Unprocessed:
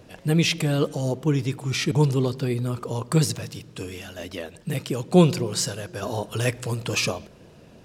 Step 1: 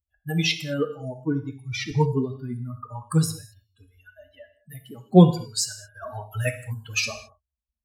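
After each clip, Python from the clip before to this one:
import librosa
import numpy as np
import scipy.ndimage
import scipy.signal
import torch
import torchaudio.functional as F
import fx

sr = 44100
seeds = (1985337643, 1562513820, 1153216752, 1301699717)

y = fx.bin_expand(x, sr, power=3.0)
y = fx.rev_gated(y, sr, seeds[0], gate_ms=240, shape='falling', drr_db=6.5)
y = y * 10.0 ** (4.0 / 20.0)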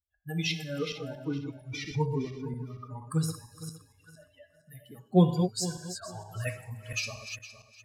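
y = fx.reverse_delay_fb(x, sr, ms=231, feedback_pct=43, wet_db=-7.5)
y = y * 10.0 ** (-8.0 / 20.0)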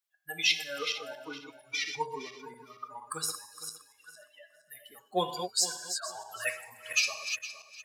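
y = scipy.signal.sosfilt(scipy.signal.butter(2, 880.0, 'highpass', fs=sr, output='sos'), x)
y = y * 10.0 ** (6.5 / 20.0)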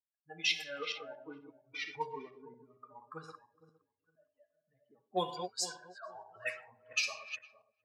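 y = fx.high_shelf(x, sr, hz=8900.0, db=-12.0)
y = fx.env_lowpass(y, sr, base_hz=310.0, full_db=-26.5)
y = y * 10.0 ** (-4.0 / 20.0)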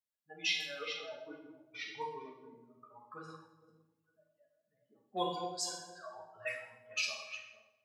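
y = fx.rev_fdn(x, sr, rt60_s=0.73, lf_ratio=1.45, hf_ratio=0.95, size_ms=28.0, drr_db=-1.0)
y = y * 10.0 ** (-5.0 / 20.0)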